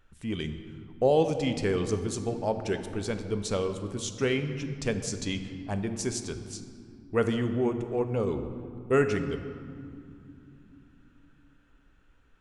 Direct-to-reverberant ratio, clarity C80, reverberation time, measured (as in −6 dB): 7.5 dB, 10.0 dB, 2.8 s